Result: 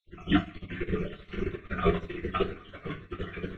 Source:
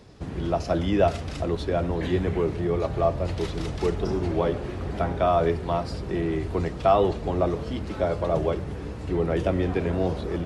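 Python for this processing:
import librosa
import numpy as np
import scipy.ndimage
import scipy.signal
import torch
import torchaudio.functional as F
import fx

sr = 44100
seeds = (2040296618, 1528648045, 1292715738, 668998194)

y = fx.spec_dropout(x, sr, seeds[0], share_pct=69)
y = scipy.signal.sosfilt(scipy.signal.butter(4, 8000.0, 'lowpass', fs=sr, output='sos'), y)
y = fx.band_shelf(y, sr, hz=2200.0, db=13.0, octaves=2.9)
y = fx.stretch_grains(y, sr, factor=0.51, grain_ms=39.0)
y = fx.fixed_phaser(y, sr, hz=2100.0, stages=4)
y = fx.dmg_crackle(y, sr, seeds[1], per_s=18.0, level_db=-46.0)
y = fx.stretch_vocoder(y, sr, factor=0.67)
y = fx.echo_split(y, sr, split_hz=850.0, low_ms=82, high_ms=779, feedback_pct=52, wet_db=-10.0)
y = fx.room_shoebox(y, sr, seeds[2], volume_m3=35.0, walls='mixed', distance_m=0.9)
y = fx.upward_expand(y, sr, threshold_db=-34.0, expansion=2.5)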